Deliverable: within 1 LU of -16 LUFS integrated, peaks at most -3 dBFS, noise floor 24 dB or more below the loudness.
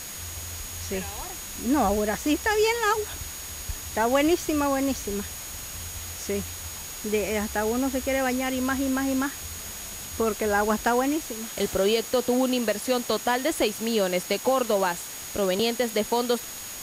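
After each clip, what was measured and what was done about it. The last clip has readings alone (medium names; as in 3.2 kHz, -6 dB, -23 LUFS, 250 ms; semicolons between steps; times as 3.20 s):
steady tone 6.7 kHz; tone level -40 dBFS; noise floor -38 dBFS; noise floor target -51 dBFS; loudness -26.5 LUFS; peak level -11.5 dBFS; loudness target -16.0 LUFS
-> band-stop 6.7 kHz, Q 30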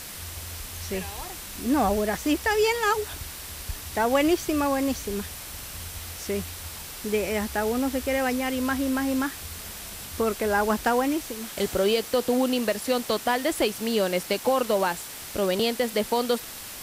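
steady tone not found; noise floor -39 dBFS; noise floor target -51 dBFS
-> noise reduction 12 dB, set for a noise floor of -39 dBFS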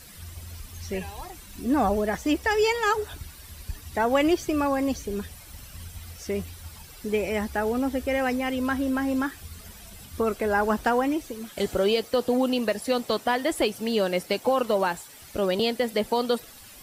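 noise floor -47 dBFS; noise floor target -50 dBFS
-> noise reduction 6 dB, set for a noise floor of -47 dBFS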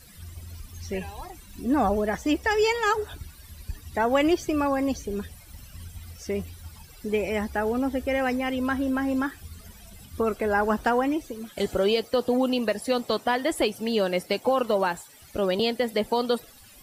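noise floor -50 dBFS; loudness -26.0 LUFS; peak level -12.0 dBFS; loudness target -16.0 LUFS
-> trim +10 dB; peak limiter -3 dBFS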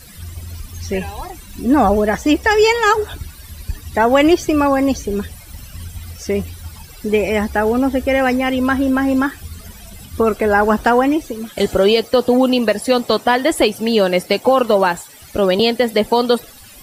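loudness -16.0 LUFS; peak level -3.0 dBFS; noise floor -40 dBFS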